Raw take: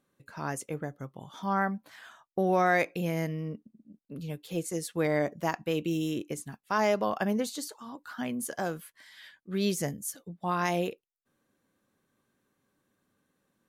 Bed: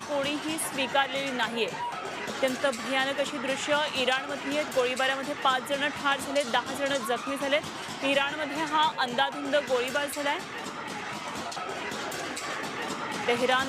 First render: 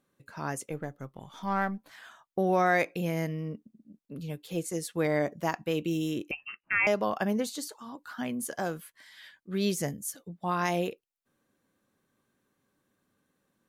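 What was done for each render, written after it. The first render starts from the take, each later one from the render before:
0:00.71–0:01.90: gain on one half-wave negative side −3 dB
0:06.31–0:06.87: voice inversion scrambler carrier 2,900 Hz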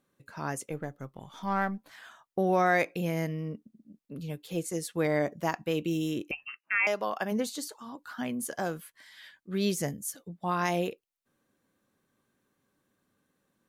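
0:06.49–0:07.31: high-pass filter 1,000 Hz → 410 Hz 6 dB per octave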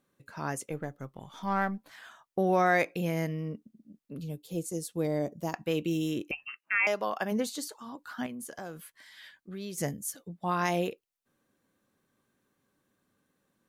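0:04.24–0:05.54: parametric band 1,700 Hz −14.5 dB 1.8 octaves
0:08.26–0:09.78: downward compressor 2.5 to 1, threshold −41 dBFS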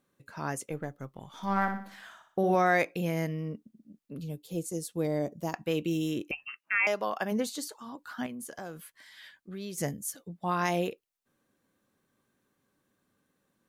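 0:01.33–0:02.55: flutter between parallel walls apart 10.4 metres, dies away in 0.49 s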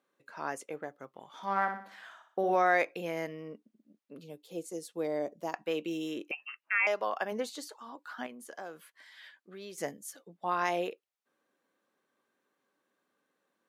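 high-pass filter 390 Hz 12 dB per octave
high-shelf EQ 5,700 Hz −11 dB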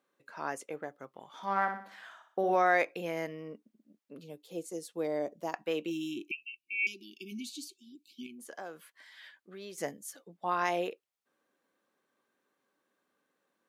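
0:05.90–0:08.39: time-frequency box erased 390–2,200 Hz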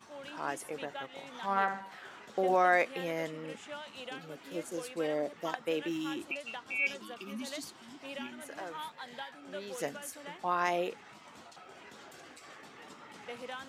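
mix in bed −18 dB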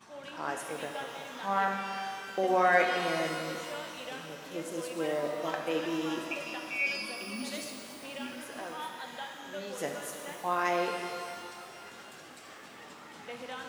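reverb with rising layers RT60 2.4 s, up +12 semitones, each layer −8 dB, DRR 2.5 dB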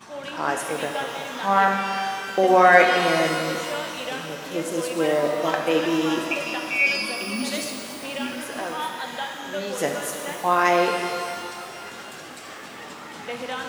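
level +10.5 dB

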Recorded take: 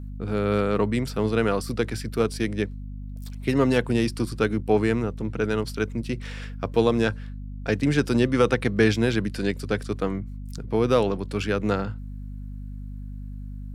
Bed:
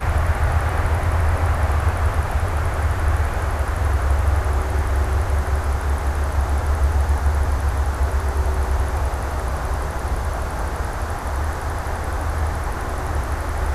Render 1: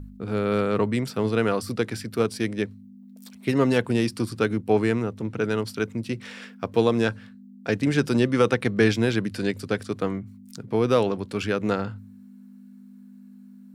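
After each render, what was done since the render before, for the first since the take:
hum removal 50 Hz, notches 3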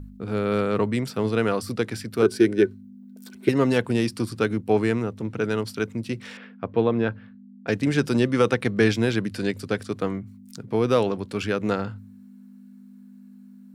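0:02.22–0:03.49: hollow resonant body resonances 370/1,500 Hz, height 18 dB, ringing for 65 ms
0:06.37–0:07.68: high-frequency loss of the air 380 metres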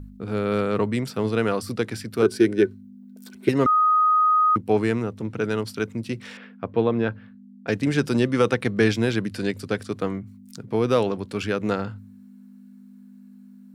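0:03.66–0:04.56: beep over 1,250 Hz −15 dBFS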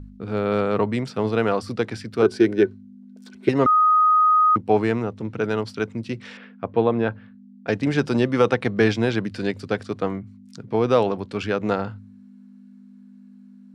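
low-pass filter 6,000 Hz 12 dB per octave
dynamic equaliser 770 Hz, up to +6 dB, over −37 dBFS, Q 1.4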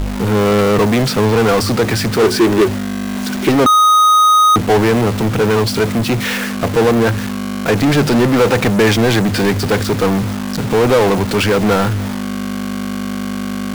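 bit-depth reduction 8 bits, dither none
power curve on the samples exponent 0.35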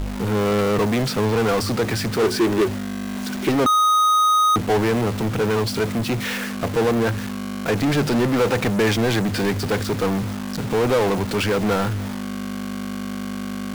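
level −7 dB

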